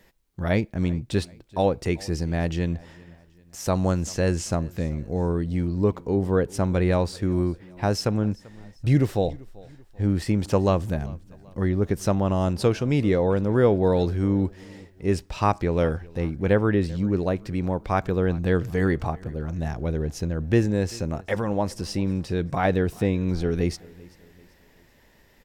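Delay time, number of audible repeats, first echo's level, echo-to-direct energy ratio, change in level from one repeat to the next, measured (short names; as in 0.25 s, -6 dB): 0.389 s, 2, -23.0 dB, -22.0 dB, -7.5 dB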